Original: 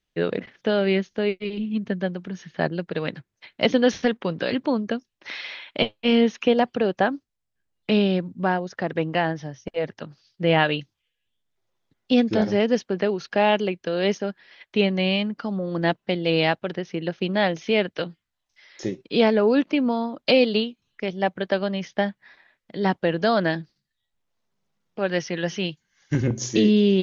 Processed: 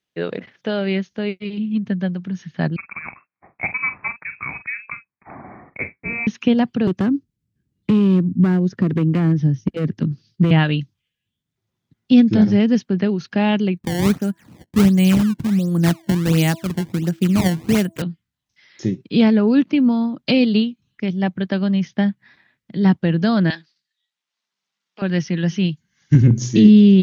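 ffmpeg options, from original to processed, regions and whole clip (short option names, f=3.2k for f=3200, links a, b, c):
-filter_complex "[0:a]asettb=1/sr,asplit=3[a][b][c];[a]atrim=end=2.764[d];[b]atrim=start=2.76:end=6.27,asetpts=PTS-STARTPTS,afade=t=in:d=0.004:c=qsin,afade=t=out:st=3.506:d=0.004:c=qsin,highpass=510,asplit=2[e][f];[f]adelay=46,volume=-11.5dB[g];[e][g]amix=inputs=2:normalize=0,atrim=end_sample=154791,lowpass=f=2.4k:t=q:w=0.5098,lowpass=f=2.4k:t=q:w=0.6013,lowpass=f=2.4k:t=q:w=0.9,lowpass=f=2.4k:t=q:w=2.563,afreqshift=-2800[h];[c]atrim=start=6.266[i];[d][h]acrossfade=d=0.004:c1=hsin:c2=qsin[j];[j][i]acrossfade=d=0.004:c1=qsin:c2=hsin,asettb=1/sr,asplit=3[k][l][m];[k]atrim=end=6.874[n];[l]atrim=start=6.87:end=10.51,asetpts=PTS-STARTPTS,afade=t=in:d=0.004:c=qsin,afade=t=out:st=3.636:d=0.004:c=qsin,lowshelf=f=520:t=q:w=1.5:g=9,acrossover=split=490|1600[o][p][q];[o]acompressor=threshold=-23dB:ratio=4[r];[p]acompressor=threshold=-23dB:ratio=4[s];[q]acompressor=threshold=-39dB:ratio=4[t];[r][s][t]amix=inputs=3:normalize=0,asoftclip=type=hard:threshold=-17.5dB[u];[m]atrim=start=10.506[v];[n][u]acrossfade=d=0.004:c1=hsin:c2=qsin[w];[w][v]acrossfade=d=0.004:c1=qsin:c2=hsin,asettb=1/sr,asplit=3[x][y][z];[x]atrim=end=13.774[aa];[y]atrim=start=13.77:end=18.02,asetpts=PTS-STARTPTS,afade=t=in:d=0.004:c=qsin,afade=t=out:st=4.246:d=0.004:c=qsin,bandreject=f=329.4:t=h:w=4,bandreject=f=658.8:t=h:w=4,bandreject=f=988.2:t=h:w=4,acrusher=samples=20:mix=1:aa=0.000001:lfo=1:lforange=32:lforate=1.4[ab];[z]atrim=start=18.016[ac];[aa][ab]acrossfade=d=0.004:c1=hsin:c2=qsin[ad];[ad][ac]acrossfade=d=0.004:c1=qsin:c2=hsin,asettb=1/sr,asplit=3[ae][af][ag];[ae]atrim=end=23.504[ah];[af]atrim=start=23.5:end=25.02,asetpts=PTS-STARTPTS,afade=t=in:d=0.004:c=qsin,afade=t=out:st=1.516:d=0.004:c=qsin,highpass=750,lowpass=5.3k,highshelf=f=2.4k:g=10[ai];[ag]atrim=start=25.016[aj];[ah][ai]acrossfade=d=0.004:c1=hsin:c2=qsin[ak];[ak][aj]acrossfade=d=0.004:c1=qsin:c2=hsin,highpass=130,asubboost=boost=10:cutoff=170"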